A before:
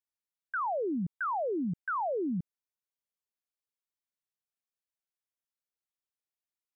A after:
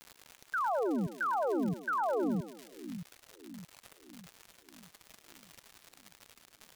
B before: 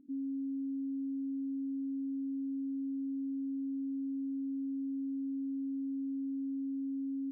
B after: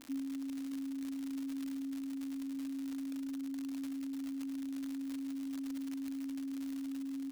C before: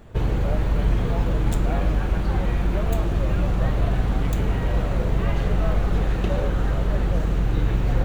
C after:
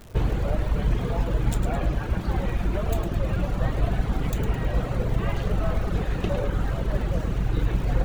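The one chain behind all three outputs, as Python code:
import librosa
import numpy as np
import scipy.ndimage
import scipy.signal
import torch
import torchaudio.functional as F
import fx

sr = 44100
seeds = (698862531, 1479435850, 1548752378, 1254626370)

y = fx.dmg_crackle(x, sr, seeds[0], per_s=160.0, level_db=-35.0)
y = fx.dereverb_blind(y, sr, rt60_s=1.2)
y = fx.echo_split(y, sr, split_hz=300.0, low_ms=619, high_ms=106, feedback_pct=52, wet_db=-9)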